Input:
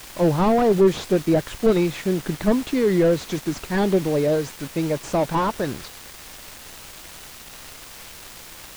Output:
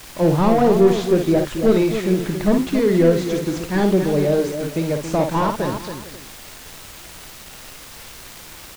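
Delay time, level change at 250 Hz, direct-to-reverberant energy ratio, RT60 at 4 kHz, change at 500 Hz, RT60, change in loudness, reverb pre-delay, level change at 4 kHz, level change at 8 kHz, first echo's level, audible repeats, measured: 54 ms, +3.5 dB, none, none, +3.0 dB, none, +3.0 dB, none, +1.5 dB, +1.5 dB, -6.0 dB, 4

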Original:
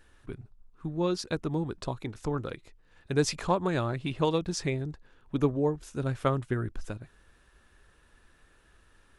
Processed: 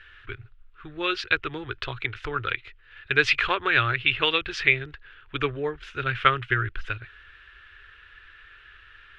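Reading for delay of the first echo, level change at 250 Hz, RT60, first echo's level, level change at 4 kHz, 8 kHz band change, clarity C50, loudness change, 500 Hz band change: none, -6.0 dB, none, none, +12.0 dB, n/a, none, +6.0 dB, -1.0 dB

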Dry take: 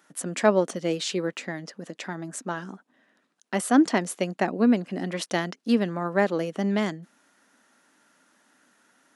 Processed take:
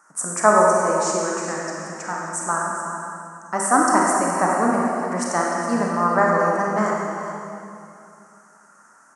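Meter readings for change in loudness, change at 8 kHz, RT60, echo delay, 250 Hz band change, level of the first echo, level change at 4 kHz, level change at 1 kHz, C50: +5.5 dB, +11.0 dB, 2.5 s, 0.417 s, 0.0 dB, -11.0 dB, -3.0 dB, +13.0 dB, -2.0 dB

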